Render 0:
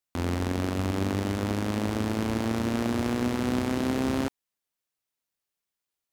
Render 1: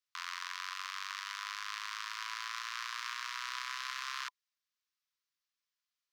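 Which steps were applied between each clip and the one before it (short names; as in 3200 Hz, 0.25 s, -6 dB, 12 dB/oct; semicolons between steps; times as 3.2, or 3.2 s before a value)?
Chebyshev high-pass 1000 Hz, order 8; resonant high shelf 7000 Hz -8 dB, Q 1.5; gain -1.5 dB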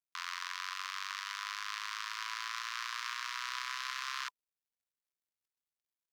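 companded quantiser 8-bit; gain +1 dB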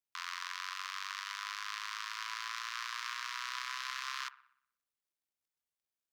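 dark delay 61 ms, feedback 53%, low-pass 1600 Hz, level -14 dB; gain -1 dB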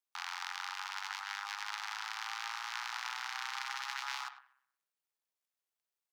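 ladder high-pass 480 Hz, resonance 30%; ring modulator 200 Hz; speakerphone echo 0.1 s, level -12 dB; gain +9 dB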